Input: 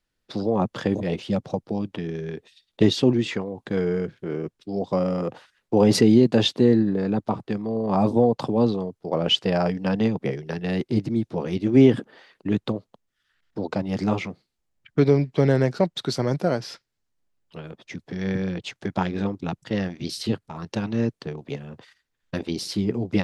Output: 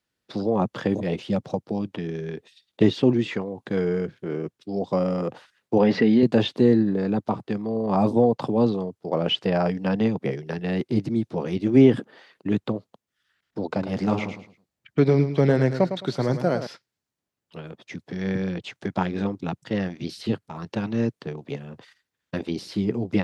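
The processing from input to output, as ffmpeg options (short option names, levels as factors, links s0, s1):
-filter_complex "[0:a]asettb=1/sr,asplit=3[s0][s1][s2];[s0]atrim=end=5.784[s3];[s1]atrim=start=5.78:end=6.23,asetpts=PTS-STARTPTS,afade=t=in:d=0.004:c=qsin,afade=t=out:st=0.446:d=0.004:c=qsin,highpass=110,equalizer=f=120:t=q:w=4:g=-10,equalizer=f=350:t=q:w=4:g=-7,equalizer=f=1800:t=q:w=4:g=8,lowpass=f=4800:w=0.5412,lowpass=f=4800:w=1.3066[s4];[s2]atrim=start=6.226[s5];[s3][s4]acrossfade=d=0.004:c1=hsin:c2=qsin[s6];[s6][s5]acrossfade=d=0.004:c1=qsin:c2=hsin,asettb=1/sr,asplit=3[s7][s8][s9];[s7]atrim=end=13.654[s10];[s8]atrim=start=13.65:end=16.67,asetpts=PTS-STARTPTS,afade=t=in:d=0.004:c=qsin,afade=t=out:st=3.016:d=0.004:c=qsin,aecho=1:1:107|214|321:0.335|0.0871|0.0226,atrim=end_sample=133182[s11];[s9]atrim=start=16.666[s12];[s10][s11]acrossfade=d=0.004:c1=hsin:c2=qsin[s13];[s13][s12]acrossfade=d=0.004:c1=qsin:c2=hsin,acrossover=split=3200[s14][s15];[s15]acompressor=threshold=0.00708:ratio=4:attack=1:release=60[s16];[s14][s16]amix=inputs=2:normalize=0,highpass=88"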